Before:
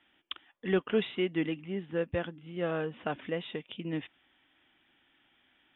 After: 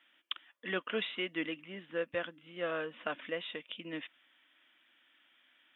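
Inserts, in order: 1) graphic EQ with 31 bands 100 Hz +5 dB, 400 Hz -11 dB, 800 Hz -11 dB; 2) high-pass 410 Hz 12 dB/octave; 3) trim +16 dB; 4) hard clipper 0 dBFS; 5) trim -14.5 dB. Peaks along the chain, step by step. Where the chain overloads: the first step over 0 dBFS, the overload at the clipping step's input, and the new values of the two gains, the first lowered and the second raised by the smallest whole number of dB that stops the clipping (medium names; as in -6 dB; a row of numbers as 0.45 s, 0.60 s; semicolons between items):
-20.0 dBFS, -21.5 dBFS, -5.5 dBFS, -5.5 dBFS, -20.0 dBFS; nothing clips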